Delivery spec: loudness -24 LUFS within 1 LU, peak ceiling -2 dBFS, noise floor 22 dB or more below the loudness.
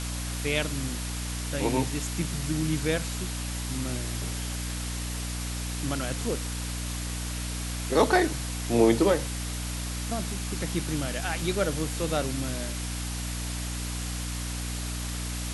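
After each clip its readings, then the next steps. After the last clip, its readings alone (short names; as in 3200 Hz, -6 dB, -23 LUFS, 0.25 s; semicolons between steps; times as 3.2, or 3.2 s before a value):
hum 60 Hz; harmonics up to 300 Hz; hum level -31 dBFS; noise floor -33 dBFS; noise floor target -52 dBFS; loudness -29.5 LUFS; peak -8.5 dBFS; loudness target -24.0 LUFS
-> notches 60/120/180/240/300 Hz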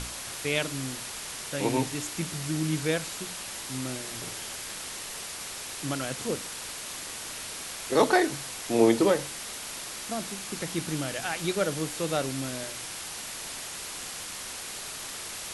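hum none; noise floor -39 dBFS; noise floor target -53 dBFS
-> denoiser 14 dB, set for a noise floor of -39 dBFS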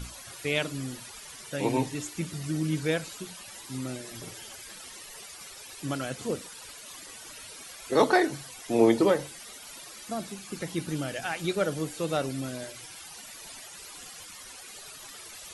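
noise floor -46 dBFS; noise floor target -52 dBFS
-> denoiser 6 dB, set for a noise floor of -46 dBFS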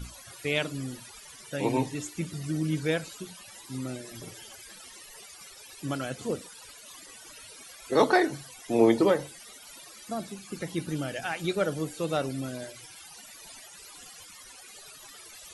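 noise floor -49 dBFS; noise floor target -52 dBFS
-> denoiser 6 dB, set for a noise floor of -49 dBFS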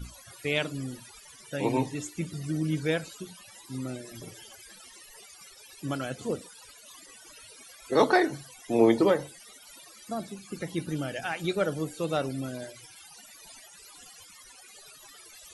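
noise floor -52 dBFS; loudness -29.5 LUFS; peak -9.0 dBFS; loudness target -24.0 LUFS
-> gain +5.5 dB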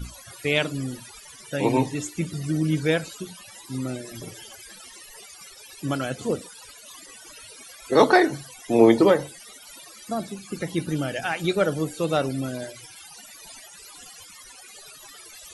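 loudness -24.0 LUFS; peak -3.5 dBFS; noise floor -46 dBFS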